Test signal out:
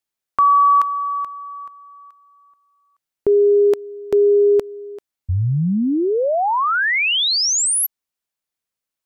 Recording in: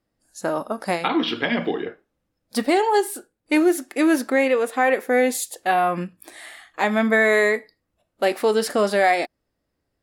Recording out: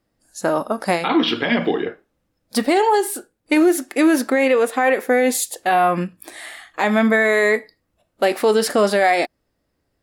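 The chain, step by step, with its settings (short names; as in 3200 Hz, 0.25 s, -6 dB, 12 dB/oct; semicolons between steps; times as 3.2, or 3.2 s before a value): limiter -12.5 dBFS; gain +5 dB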